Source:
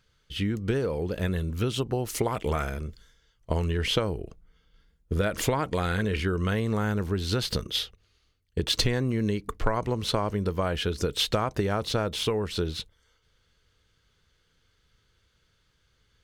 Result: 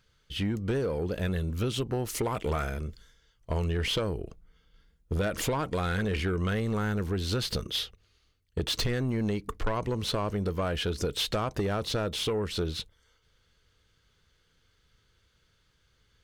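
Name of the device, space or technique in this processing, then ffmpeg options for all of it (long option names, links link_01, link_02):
saturation between pre-emphasis and de-emphasis: -af "highshelf=frequency=5300:gain=6.5,asoftclip=type=tanh:threshold=-21.5dB,highshelf=frequency=5300:gain=-6.5"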